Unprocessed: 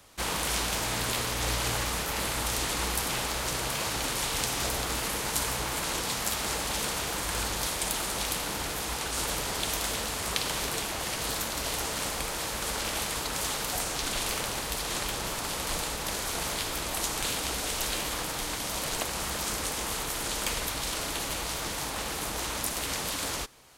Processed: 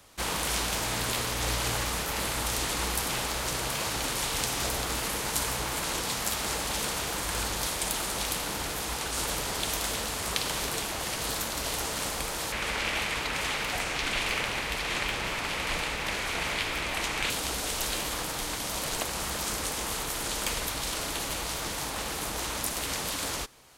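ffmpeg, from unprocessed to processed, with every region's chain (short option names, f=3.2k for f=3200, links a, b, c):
-filter_complex "[0:a]asettb=1/sr,asplit=3[a][b][c];[a]atrim=end=12.524[d];[b]atrim=start=12.52:end=17.3,asetpts=PTS-STARTPTS,afade=t=in:d=0.004:c=qsin,afade=t=out:st=4.776:d=0.004:c=qsin,lowpass=f=3.8k:p=1,equalizer=f=2.3k:w=1.4:g=10[e];[c]atrim=start=17.296[f];[d][e]acrossfade=d=0.004:c1=hsin:c2=qsin[g];[g][f]acrossfade=d=0.004:c1=qsin:c2=hsin"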